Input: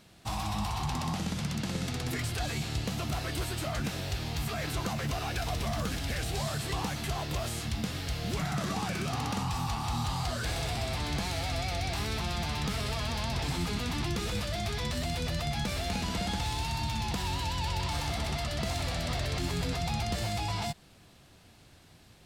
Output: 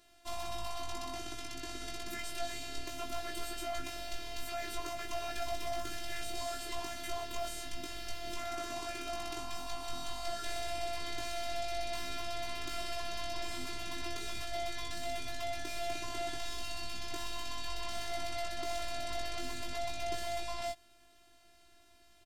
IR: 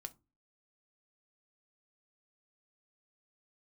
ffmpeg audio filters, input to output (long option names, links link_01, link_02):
-filter_complex "[0:a]afftfilt=real='hypot(re,im)*cos(PI*b)':imag='0':win_size=512:overlap=0.75,asplit=2[link_01][link_02];[link_02]adelay=19,volume=-4dB[link_03];[link_01][link_03]amix=inputs=2:normalize=0,volume=-3dB"